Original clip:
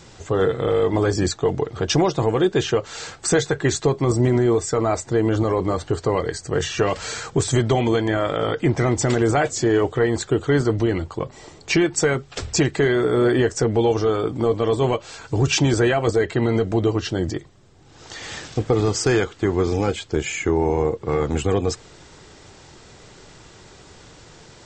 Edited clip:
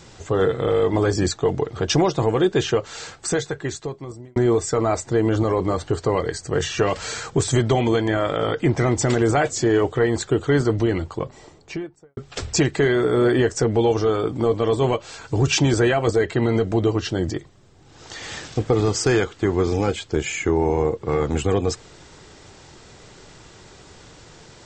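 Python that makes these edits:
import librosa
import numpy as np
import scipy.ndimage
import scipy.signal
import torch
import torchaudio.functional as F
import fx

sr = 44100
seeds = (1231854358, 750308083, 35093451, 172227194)

y = fx.studio_fade_out(x, sr, start_s=11.09, length_s=1.08)
y = fx.edit(y, sr, fx.fade_out_span(start_s=2.73, length_s=1.63), tone=tone)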